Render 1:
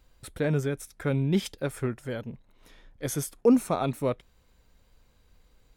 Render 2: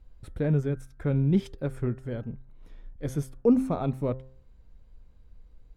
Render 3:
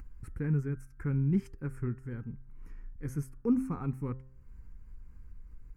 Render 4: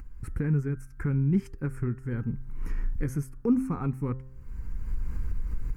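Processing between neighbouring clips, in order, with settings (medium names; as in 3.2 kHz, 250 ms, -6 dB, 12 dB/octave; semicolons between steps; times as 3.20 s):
tilt EQ -3 dB/octave; de-hum 131.1 Hz, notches 14; trim -5 dB
upward compressor, threshold -33 dBFS; static phaser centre 1.5 kHz, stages 4; trim -3.5 dB
recorder AGC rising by 16 dB/s; trim +3.5 dB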